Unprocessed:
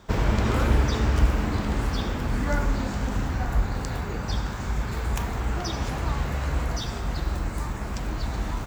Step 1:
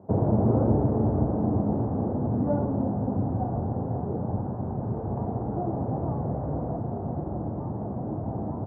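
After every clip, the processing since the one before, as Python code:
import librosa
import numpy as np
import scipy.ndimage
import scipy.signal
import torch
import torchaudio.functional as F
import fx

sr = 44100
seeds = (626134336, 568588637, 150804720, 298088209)

y = scipy.signal.sosfilt(scipy.signal.ellip(3, 1.0, 60, [100.0, 750.0], 'bandpass', fs=sr, output='sos'), x)
y = F.gain(torch.from_numpy(y), 4.5).numpy()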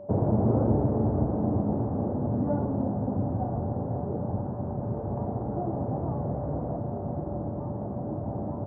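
y = x + 10.0 ** (-39.0 / 20.0) * np.sin(2.0 * np.pi * 580.0 * np.arange(len(x)) / sr)
y = F.gain(torch.from_numpy(y), -1.5).numpy()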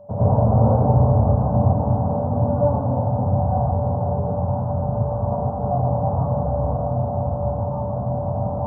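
y = fx.fixed_phaser(x, sr, hz=840.0, stages=4)
y = fx.rev_plate(y, sr, seeds[0], rt60_s=0.54, hf_ratio=0.65, predelay_ms=90, drr_db=-8.5)
y = F.gain(torch.from_numpy(y), 1.5).numpy()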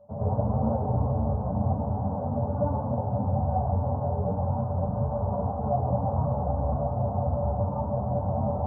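y = fx.rider(x, sr, range_db=10, speed_s=2.0)
y = fx.ensemble(y, sr)
y = F.gain(torch.from_numpy(y), -3.5).numpy()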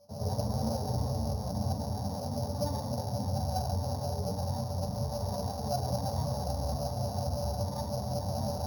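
y = np.r_[np.sort(x[:len(x) // 8 * 8].reshape(-1, 8), axis=1).ravel(), x[len(x) // 8 * 8:]]
y = F.gain(torch.from_numpy(y), -6.0).numpy()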